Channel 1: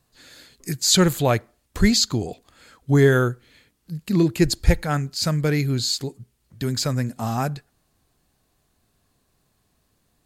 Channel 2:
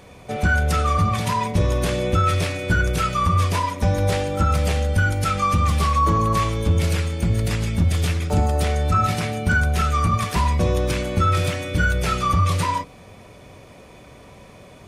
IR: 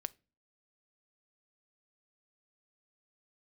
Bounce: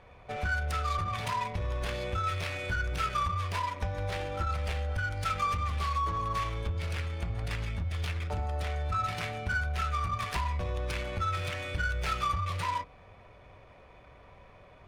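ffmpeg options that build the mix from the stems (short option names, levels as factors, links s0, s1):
-filter_complex "[0:a]lowpass=f=2900:p=1,acompressor=threshold=0.126:ratio=6,volume=0.119[s0];[1:a]aexciter=amount=2.3:drive=5.8:freq=9900,acompressor=threshold=0.0891:ratio=6,volume=0.841[s1];[s0][s1]amix=inputs=2:normalize=0,equalizer=f=230:t=o:w=2.6:g=-15,adynamicsmooth=sensitivity=6:basefreq=1800"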